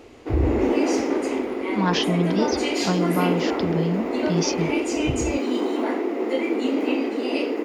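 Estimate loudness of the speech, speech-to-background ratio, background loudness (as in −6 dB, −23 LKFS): −26.5 LKFS, −2.5 dB, −24.0 LKFS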